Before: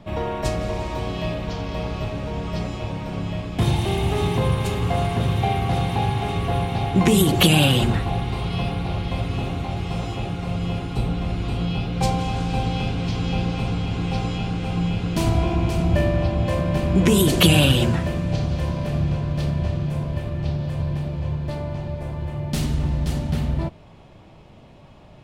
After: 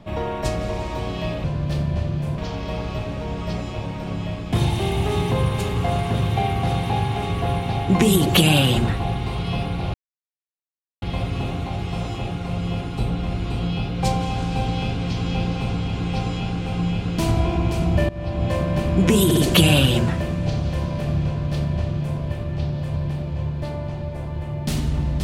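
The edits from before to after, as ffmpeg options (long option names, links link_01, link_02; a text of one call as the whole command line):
ffmpeg -i in.wav -filter_complex "[0:a]asplit=7[link_01][link_02][link_03][link_04][link_05][link_06][link_07];[link_01]atrim=end=1.442[link_08];[link_02]atrim=start=19.118:end=20.062[link_09];[link_03]atrim=start=1.438:end=9,asetpts=PTS-STARTPTS,afade=type=out:start_time=7.558:duration=0.004:curve=hsin,apad=pad_dur=1.08[link_10];[link_04]atrim=start=9:end=16.07,asetpts=PTS-STARTPTS,afade=type=in:duration=0.004:curve=hsin,afade=type=out:start_time=7.066:duration=0.004:curve=hsin:silence=0.105925[link_11];[link_05]atrim=start=16.07:end=17.292,asetpts=PTS-STARTPTS,afade=type=in:duration=0.37:silence=0.105925[link_12];[link_06]atrim=start=17.228:end=17.292[link_13];[link_07]atrim=start=17.228[link_14];[link_08][link_09]acrossfade=duration=0.004:curve1=hsin:curve2=hsin[link_15];[link_10][link_11][link_12]concat=n=3:v=0:a=1[link_16];[link_15][link_16]acrossfade=duration=0.004:curve1=hsin:curve2=hsin[link_17];[link_17][link_13]acrossfade=duration=0.004:curve1=hsin:curve2=hsin[link_18];[link_18][link_14]acrossfade=duration=0.004:curve1=hsin:curve2=hsin" out.wav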